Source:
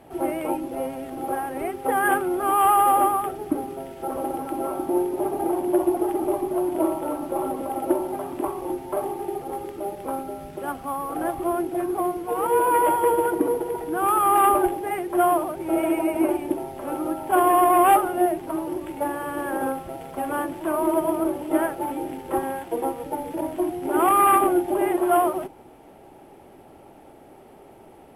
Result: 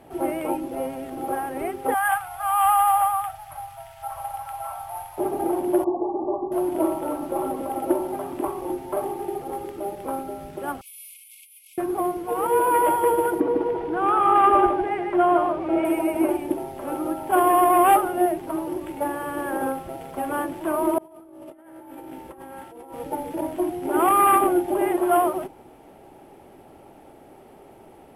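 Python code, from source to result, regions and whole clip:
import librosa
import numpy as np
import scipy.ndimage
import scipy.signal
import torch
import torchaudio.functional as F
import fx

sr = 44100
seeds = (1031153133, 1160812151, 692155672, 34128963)

y = fx.chain(x, sr, fx.ellip_bandstop(low_hz=120.0, high_hz=710.0, order=3, stop_db=40),
    fx.peak_eq(hz=490.0, db=-11.5, octaves=0.2),
    fx.hum_notches(base_hz=60, count=10), at=(1.94, 5.18))
y = fx.chain(y, sr, fx.brickwall_lowpass(high_hz=1200.0),
    fx.low_shelf(hz=210.0, db=-9.5), at=(5.84, 6.52))
y = fx.chain(y, sr, fx.peak_eq(hz=8100.0, db=3.0, octaves=1.1),
    fx.over_compress(threshold_db=-29.0, ratio=-1.0),
    fx.brickwall_highpass(low_hz=2100.0), at=(10.81, 11.78))
y = fx.chain(y, sr, fx.lowpass(hz=3800.0, slope=12),
    fx.echo_single(ms=153, db=-4.5), at=(13.4, 15.85))
y = fx.chain(y, sr, fx.comb_fb(f0_hz=64.0, decay_s=1.4, harmonics='all', damping=0.0, mix_pct=80),
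    fx.over_compress(threshold_db=-43.0, ratio=-1.0), at=(20.98, 22.94))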